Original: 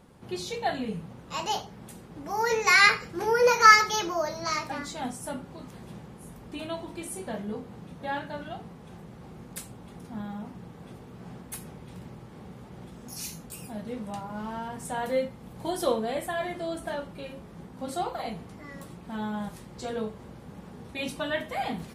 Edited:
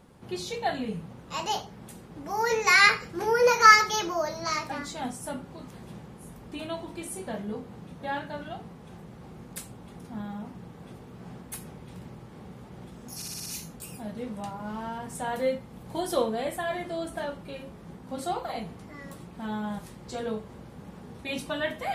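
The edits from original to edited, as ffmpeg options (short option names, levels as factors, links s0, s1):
-filter_complex "[0:a]asplit=6[s0][s1][s2][s3][s4][s5];[s0]atrim=end=13.222[s6];[s1]atrim=start=13.158:end=13.222[s7];[s2]atrim=start=13.158:end=13.222[s8];[s3]atrim=start=13.158:end=13.222[s9];[s4]atrim=start=13.158:end=13.222[s10];[s5]atrim=start=13.158[s11];[s6][s7]acrossfade=d=0.004:c1=hsin:c2=hsin[s12];[s12][s8]acrossfade=d=0.004:c1=hsin:c2=hsin[s13];[s13][s9]acrossfade=d=0.004:c1=hsin:c2=hsin[s14];[s14][s10]acrossfade=d=0.004:c1=hsin:c2=hsin[s15];[s15][s11]acrossfade=d=0.004:c1=hsin:c2=hsin"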